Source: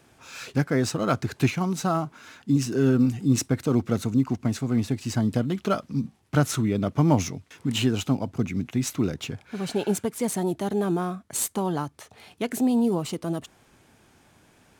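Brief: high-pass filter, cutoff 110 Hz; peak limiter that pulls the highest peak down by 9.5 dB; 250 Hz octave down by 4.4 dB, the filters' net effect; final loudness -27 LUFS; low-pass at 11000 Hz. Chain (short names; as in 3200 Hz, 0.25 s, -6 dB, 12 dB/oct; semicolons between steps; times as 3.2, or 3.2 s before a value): HPF 110 Hz; LPF 11000 Hz; bell 250 Hz -5 dB; gain +3 dB; limiter -14 dBFS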